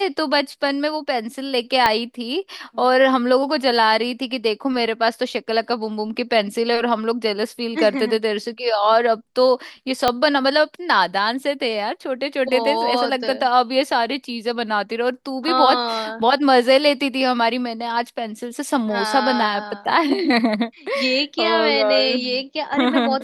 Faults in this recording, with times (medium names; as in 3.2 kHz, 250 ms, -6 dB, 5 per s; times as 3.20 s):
1.86 s: pop -4 dBFS
10.08 s: pop -3 dBFS